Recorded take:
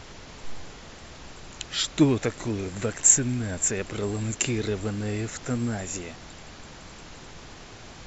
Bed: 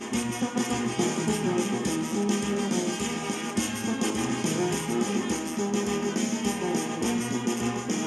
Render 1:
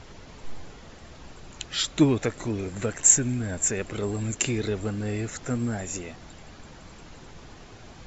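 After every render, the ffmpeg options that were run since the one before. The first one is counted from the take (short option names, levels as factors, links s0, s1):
-af "afftdn=nr=6:nf=-45"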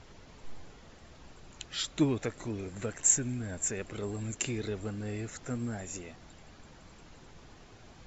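-af "volume=0.422"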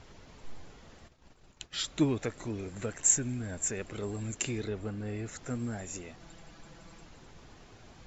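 -filter_complex "[0:a]asplit=3[s0][s1][s2];[s0]afade=t=out:st=1.07:d=0.02[s3];[s1]agate=range=0.0224:threshold=0.00562:ratio=3:release=100:detection=peak,afade=t=in:st=1.07:d=0.02,afade=t=out:st=1.74:d=0.02[s4];[s2]afade=t=in:st=1.74:d=0.02[s5];[s3][s4][s5]amix=inputs=3:normalize=0,asettb=1/sr,asplit=3[s6][s7][s8];[s6]atrim=end=4.644[s9];[s7]atrim=start=4.64:end=5.26,asetpts=PTS-STARTPTS,afade=t=in:d=0.004:c=qsin,afade=t=out:st=0.616:d=0.004:c=qsin,highshelf=f=5000:g=-10[s10];[s8]atrim=start=5.256[s11];[s9][s10]acrossfade=d=0.004:c1=hsin:c2=qsin[s12];[s12][s11]acrossfade=d=0.004:c1=qsin:c2=hsin,asettb=1/sr,asplit=3[s13][s14][s15];[s13]atrim=end=6.194[s16];[s14]atrim=start=6.19:end=7.05,asetpts=PTS-STARTPTS,afade=t=in:d=0.004:c=qsin,afade=t=out:st=0.856:d=0.004:c=qsin,aecho=1:1:6:0.59,atrim=end_sample=37926[s17];[s15]atrim=start=7.046[s18];[s16][s17]acrossfade=d=0.004:c1=hsin:c2=qsin[s19];[s19][s18]acrossfade=d=0.004:c1=qsin:c2=hsin"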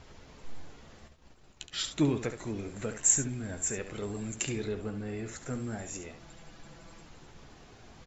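-filter_complex "[0:a]asplit=2[s0][s1];[s1]adelay=14,volume=0.266[s2];[s0][s2]amix=inputs=2:normalize=0,aecho=1:1:70:0.316"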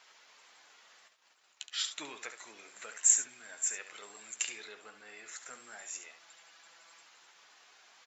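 -af "highpass=1200"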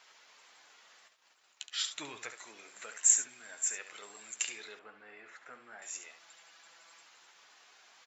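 -filter_complex "[0:a]asettb=1/sr,asplit=3[s0][s1][s2];[s0]atrim=end=1.844[s3];[s1]atrim=start=1.84:end=2.34,asetpts=PTS-STARTPTS,afade=t=in:d=0.004:c=qsin,afade=t=out:st=0.496:d=0.004:c=qsin,equalizer=f=110:w=2:g=14[s4];[s2]atrim=start=2.336[s5];[s3][s4]acrossfade=d=0.004:c1=hsin:c2=qsin[s6];[s6][s5]acrossfade=d=0.004:c1=qsin:c2=hsin,asettb=1/sr,asplit=3[s7][s8][s9];[s7]atrim=end=4.794[s10];[s8]atrim=start=4.79:end=5.82,asetpts=PTS-STARTPTS,afade=t=in:d=0.004:c=qsin,afade=t=out:st=1.026:d=0.004:c=qsin,lowpass=2200[s11];[s9]atrim=start=5.816[s12];[s10][s11]acrossfade=d=0.004:c1=hsin:c2=qsin[s13];[s13][s12]acrossfade=d=0.004:c1=qsin:c2=hsin"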